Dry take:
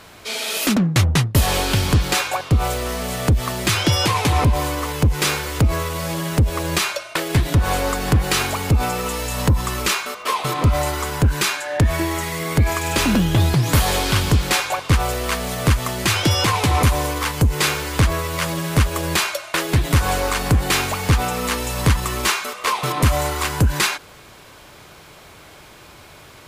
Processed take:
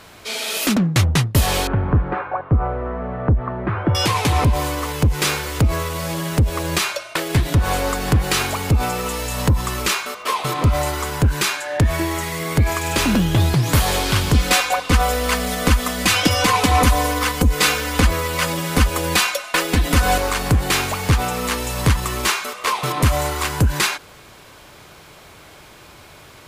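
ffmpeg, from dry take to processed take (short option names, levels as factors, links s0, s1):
-filter_complex "[0:a]asettb=1/sr,asplit=3[s0][s1][s2];[s0]atrim=end=1.674[s3];[s1]atrim=start=1.67:end=3.95,asetpts=PTS-STARTPTS,afade=t=in:d=0.004:c=qsin,afade=t=out:st=2.276:d=0.004:c=qsin,lowpass=f=1500:w=0.5412,lowpass=f=1500:w=1.3066[s4];[s2]atrim=start=3.946[s5];[s3][s4]acrossfade=d=0.004:c1=hsin:c2=qsin[s6];[s6][s5]acrossfade=d=0.004:c1=qsin:c2=hsin,asettb=1/sr,asplit=3[s7][s8][s9];[s7]atrim=end=14.344[s10];[s8]atrim=start=14.34:end=20.18,asetpts=PTS-STARTPTS,afade=t=in:d=0.004:c=qsin,afade=t=out:st=5.836:d=0.004:c=qsin,aecho=1:1:4:0.91,atrim=end_sample=257544[s11];[s9]atrim=start=20.176[s12];[s10][s11]acrossfade=d=0.004:c1=hsin:c2=qsin[s13];[s13][s12]acrossfade=d=0.004:c1=qsin:c2=hsin"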